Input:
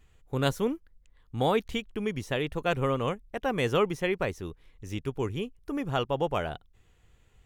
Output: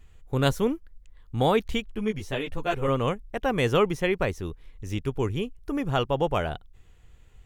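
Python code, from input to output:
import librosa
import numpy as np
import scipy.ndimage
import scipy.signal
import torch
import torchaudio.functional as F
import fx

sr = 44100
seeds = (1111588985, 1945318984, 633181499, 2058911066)

y = fx.low_shelf(x, sr, hz=66.0, db=8.5)
y = fx.ensemble(y, sr, at=(1.95, 2.88))
y = y * 10.0 ** (3.0 / 20.0)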